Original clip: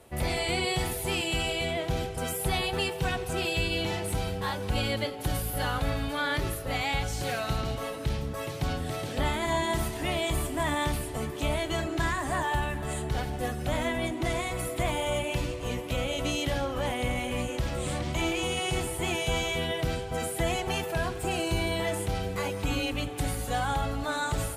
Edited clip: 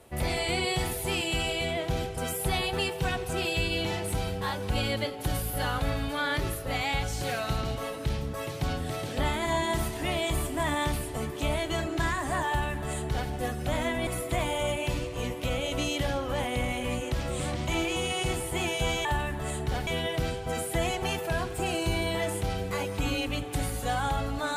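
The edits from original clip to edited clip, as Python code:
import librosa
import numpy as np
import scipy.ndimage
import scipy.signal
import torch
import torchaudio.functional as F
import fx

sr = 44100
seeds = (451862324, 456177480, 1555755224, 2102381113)

y = fx.edit(x, sr, fx.duplicate(start_s=12.48, length_s=0.82, to_s=19.52),
    fx.cut(start_s=14.07, length_s=0.47), tone=tone)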